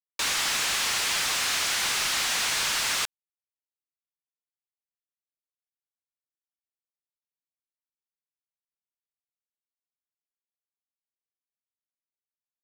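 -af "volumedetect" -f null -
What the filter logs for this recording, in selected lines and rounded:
mean_volume: -33.1 dB
max_volume: -14.2 dB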